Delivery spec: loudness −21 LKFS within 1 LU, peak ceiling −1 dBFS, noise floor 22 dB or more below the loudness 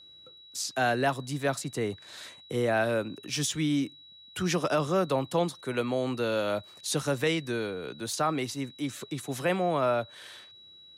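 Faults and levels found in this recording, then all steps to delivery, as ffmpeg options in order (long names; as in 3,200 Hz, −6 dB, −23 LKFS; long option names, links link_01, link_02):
interfering tone 3,900 Hz; level of the tone −50 dBFS; integrated loudness −29.5 LKFS; sample peak −16.0 dBFS; target loudness −21.0 LKFS
→ -af "bandreject=frequency=3900:width=30"
-af "volume=8.5dB"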